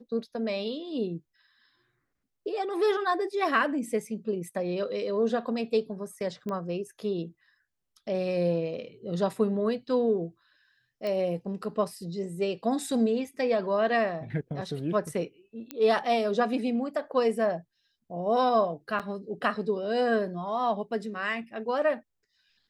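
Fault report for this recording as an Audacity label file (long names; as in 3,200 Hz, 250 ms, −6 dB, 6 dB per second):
6.490000	6.490000	click −23 dBFS
11.070000	11.070000	click −22 dBFS
15.710000	15.710000	click −18 dBFS
18.990000	19.000000	drop-out 7.3 ms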